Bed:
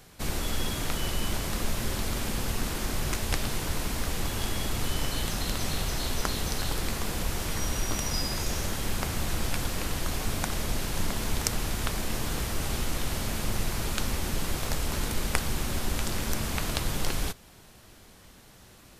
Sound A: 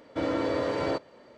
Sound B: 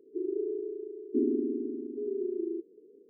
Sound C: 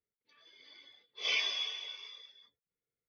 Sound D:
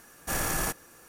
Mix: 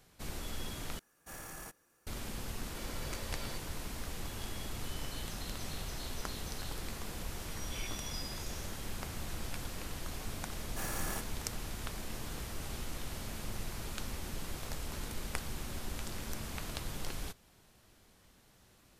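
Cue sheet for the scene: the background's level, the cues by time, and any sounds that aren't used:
bed −11 dB
0:00.99: overwrite with D −17.5 dB
0:02.60: mix in A −2 dB + first-order pre-emphasis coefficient 0.97
0:06.47: mix in C −15.5 dB
0:10.49: mix in D −10.5 dB
not used: B

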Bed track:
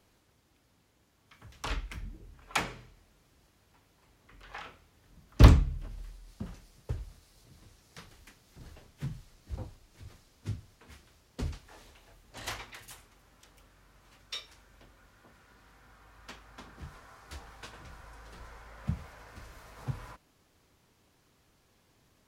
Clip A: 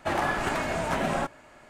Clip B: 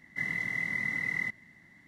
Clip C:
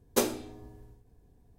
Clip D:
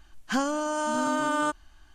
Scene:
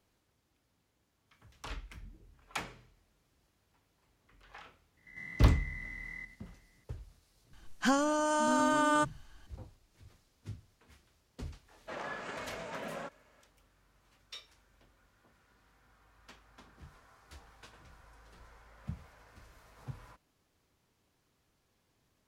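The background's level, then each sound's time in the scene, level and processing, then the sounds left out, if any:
bed track −8 dB
0:04.97: mix in B −11 dB + spectrum averaged block by block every 100 ms
0:07.53: mix in D −1.5 dB
0:11.82: mix in A −12.5 dB, fades 0.10 s + loudspeaker in its box 180–7,300 Hz, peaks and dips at 330 Hz −8 dB, 490 Hz +6 dB, 780 Hz −7 dB
not used: C

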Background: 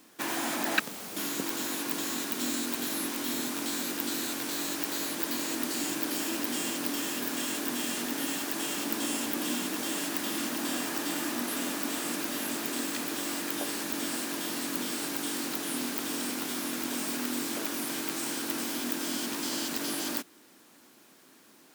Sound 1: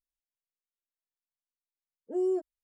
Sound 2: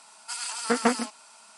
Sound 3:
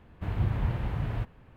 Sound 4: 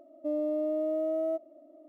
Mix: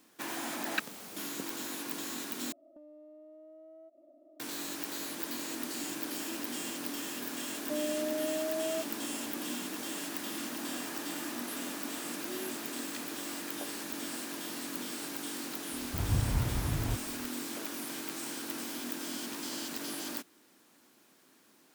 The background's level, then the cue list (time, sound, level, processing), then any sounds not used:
background −6 dB
0:02.52: overwrite with 4 −5.5 dB + downward compressor 12 to 1, threshold −45 dBFS
0:07.45: mix in 4 −4.5 dB
0:10.13: mix in 1 −15 dB
0:15.72: mix in 3 −2 dB
not used: 2

